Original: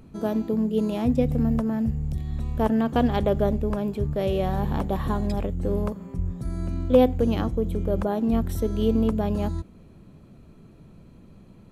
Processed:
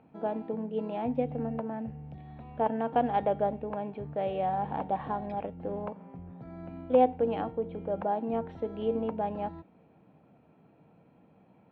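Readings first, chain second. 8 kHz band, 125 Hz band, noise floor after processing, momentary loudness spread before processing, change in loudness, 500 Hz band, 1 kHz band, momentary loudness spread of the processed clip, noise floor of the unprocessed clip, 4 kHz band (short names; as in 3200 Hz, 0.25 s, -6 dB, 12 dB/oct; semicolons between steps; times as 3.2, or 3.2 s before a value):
n/a, -15.0 dB, -62 dBFS, 9 LU, -6.5 dB, -5.0 dB, +1.5 dB, 17 LU, -50 dBFS, under -10 dB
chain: speaker cabinet 210–2600 Hz, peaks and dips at 220 Hz -5 dB, 380 Hz -7 dB, 780 Hz +9 dB, 1200 Hz -5 dB, 1900 Hz -3 dB; resonator 460 Hz, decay 0.42 s, mix 70%; gain +5.5 dB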